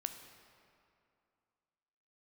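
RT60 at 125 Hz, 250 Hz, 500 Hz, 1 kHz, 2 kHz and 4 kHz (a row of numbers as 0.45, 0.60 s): 2.5, 2.6, 2.5, 2.6, 2.1, 1.6 s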